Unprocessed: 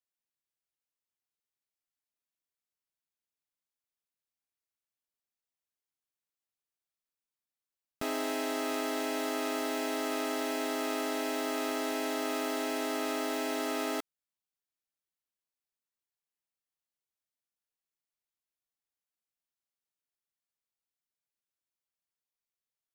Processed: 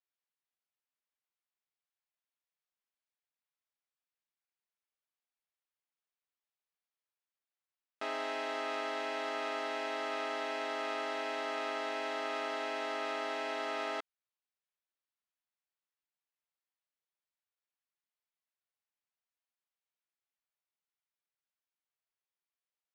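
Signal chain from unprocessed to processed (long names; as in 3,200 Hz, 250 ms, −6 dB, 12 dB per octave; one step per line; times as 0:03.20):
band-pass filter 570–3,500 Hz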